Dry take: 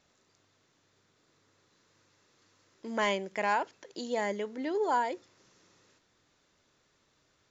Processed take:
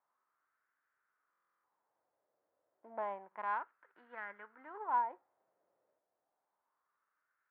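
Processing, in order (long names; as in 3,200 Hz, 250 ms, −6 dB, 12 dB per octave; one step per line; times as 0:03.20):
spectral envelope flattened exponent 0.6
low-pass filter 2,000 Hz 24 dB per octave
harmonic generator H 3 −20 dB, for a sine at −17.5 dBFS
LFO wah 0.3 Hz 610–1,500 Hz, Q 3.7
buffer that repeats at 0:01.31, samples 1,024, times 13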